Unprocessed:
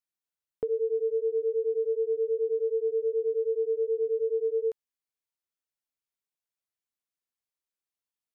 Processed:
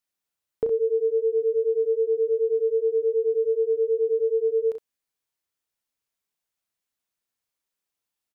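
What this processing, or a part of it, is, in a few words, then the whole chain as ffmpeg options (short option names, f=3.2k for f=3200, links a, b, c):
slapback doubling: -filter_complex "[0:a]asplit=3[a][b][c];[b]adelay=35,volume=-7.5dB[d];[c]adelay=65,volume=-9.5dB[e];[a][d][e]amix=inputs=3:normalize=0,volume=5.5dB"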